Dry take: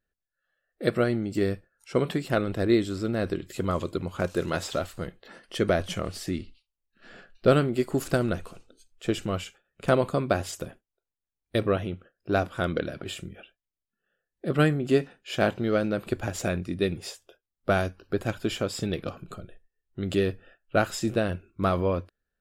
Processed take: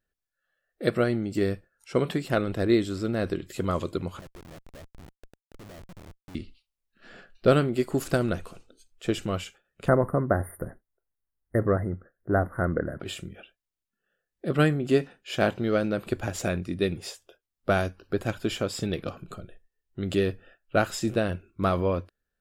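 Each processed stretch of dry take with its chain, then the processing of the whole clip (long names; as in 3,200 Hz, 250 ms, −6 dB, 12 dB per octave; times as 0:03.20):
0:04.19–0:06.35: Butterworth low-pass 780 Hz 72 dB per octave + downward compressor 4 to 1, threshold −41 dBFS + comparator with hysteresis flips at −44 dBFS
0:09.88–0:13.00: linear-phase brick-wall band-stop 2,100–8,900 Hz + low-shelf EQ 95 Hz +8.5 dB
whole clip: no processing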